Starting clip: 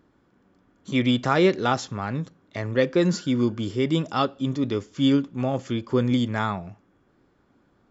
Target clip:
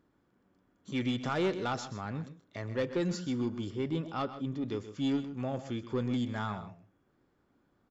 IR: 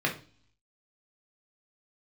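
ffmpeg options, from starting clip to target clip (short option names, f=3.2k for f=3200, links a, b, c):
-filter_complex "[0:a]asettb=1/sr,asplit=3[a][b][c];[a]atrim=end=3.704[d];[b]atrim=start=3.7:end=4.66,asetpts=PTS-STARTPTS,afade=t=in:d=0.004:c=qsin,afade=t=out:st=0.956:d=0.004:c=qsin,lowpass=f=2.5k:p=1[e];[c]atrim=start=4.656[f];[d][e]acrossfade=d=0.004:c1=hsin:c2=qsin[g];[g][f]acrossfade=d=0.004:c1=qsin:c2=hsin,asoftclip=type=tanh:threshold=-14.5dB,aecho=1:1:129|157:0.224|0.112,volume=-9dB"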